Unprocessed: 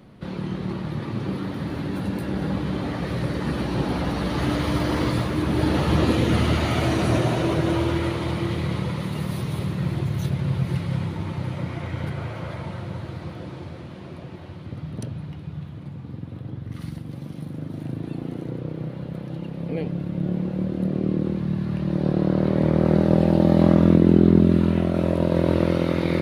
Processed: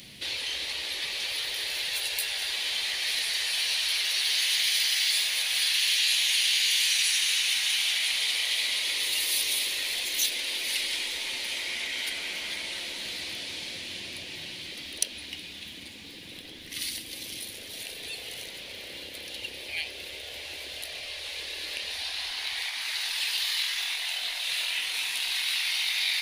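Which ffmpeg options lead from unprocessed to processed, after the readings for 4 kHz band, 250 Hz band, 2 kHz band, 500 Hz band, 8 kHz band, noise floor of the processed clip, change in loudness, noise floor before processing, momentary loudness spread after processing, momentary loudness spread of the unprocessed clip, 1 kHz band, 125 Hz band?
+14.0 dB, -32.0 dB, +6.0 dB, -23.0 dB, +16.0 dB, -43 dBFS, -3.5 dB, -38 dBFS, 15 LU, 17 LU, -14.5 dB, -36.0 dB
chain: -af "afftfilt=real='re*lt(hypot(re,im),0.0891)':imag='im*lt(hypot(re,im),0.0891)':win_size=1024:overlap=0.75,acompressor=threshold=-37dB:ratio=20,aexciter=amount=9.3:drive=8.9:freq=2k,volume=-6dB"

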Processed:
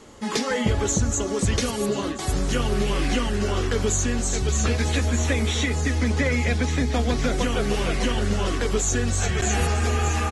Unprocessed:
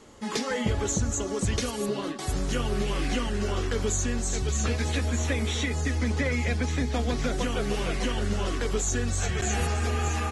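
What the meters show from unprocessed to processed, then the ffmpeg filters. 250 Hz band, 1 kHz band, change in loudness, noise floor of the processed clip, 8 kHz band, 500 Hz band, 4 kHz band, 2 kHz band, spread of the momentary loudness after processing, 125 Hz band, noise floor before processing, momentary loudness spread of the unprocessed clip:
+4.5 dB, +4.5 dB, +4.5 dB, -29 dBFS, +4.5 dB, +4.5 dB, +4.5 dB, +4.5 dB, 2 LU, +4.5 dB, -34 dBFS, 2 LU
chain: -af "aecho=1:1:1036:0.133,volume=4.5dB"

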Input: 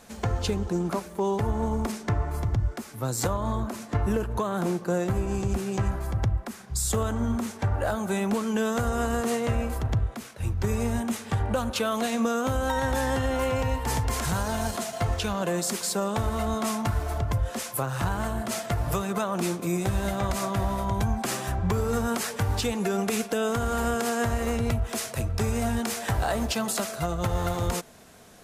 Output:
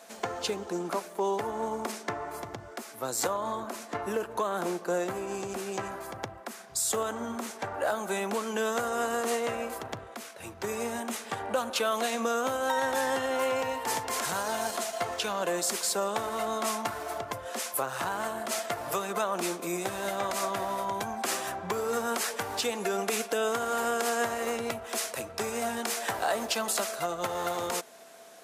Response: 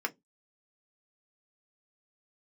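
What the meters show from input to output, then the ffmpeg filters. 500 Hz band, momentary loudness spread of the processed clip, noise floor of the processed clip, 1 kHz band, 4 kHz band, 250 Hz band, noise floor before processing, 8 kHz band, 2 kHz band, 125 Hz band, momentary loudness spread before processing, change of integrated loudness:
-1.5 dB, 8 LU, -47 dBFS, 0.0 dB, 0.0 dB, -9.0 dB, -43 dBFS, 0.0 dB, 0.0 dB, -20.0 dB, 3 LU, -3.5 dB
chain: -af "aeval=exprs='val(0)+0.00251*sin(2*PI*670*n/s)':c=same,highpass=380"

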